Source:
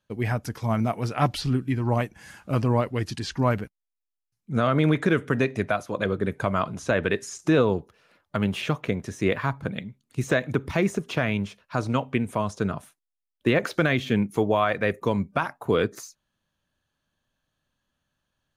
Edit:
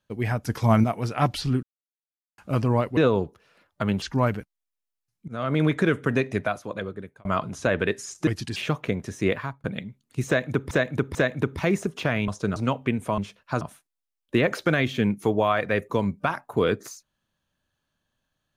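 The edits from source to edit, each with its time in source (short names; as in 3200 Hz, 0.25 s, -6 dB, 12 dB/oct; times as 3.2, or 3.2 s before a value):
0.49–0.84 gain +6 dB
1.63–2.38 mute
2.97–3.26 swap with 7.51–8.56
4.52–5.01 fade in equal-power, from -23 dB
5.6–6.49 fade out
9.3–9.64 fade out
10.27–10.71 loop, 3 plays
11.4–11.83 swap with 12.45–12.73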